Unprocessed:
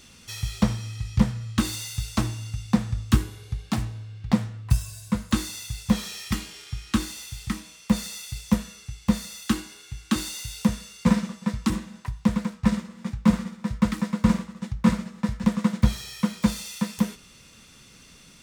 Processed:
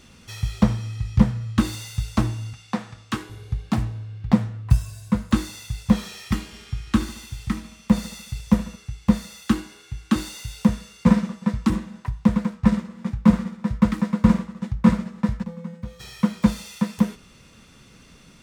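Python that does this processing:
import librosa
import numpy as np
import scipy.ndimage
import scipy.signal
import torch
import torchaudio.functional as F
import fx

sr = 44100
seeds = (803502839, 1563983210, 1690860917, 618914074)

y = fx.weighting(x, sr, curve='A', at=(2.53, 3.3))
y = fx.echo_feedback(y, sr, ms=73, feedback_pct=53, wet_db=-16, at=(6.51, 8.75), fade=0.02)
y = fx.comb_fb(y, sr, f0_hz=170.0, decay_s=0.78, harmonics='odd', damping=0.0, mix_pct=90, at=(15.42, 15.99), fade=0.02)
y = fx.high_shelf(y, sr, hz=2500.0, db=-9.5)
y = y * 10.0 ** (4.0 / 20.0)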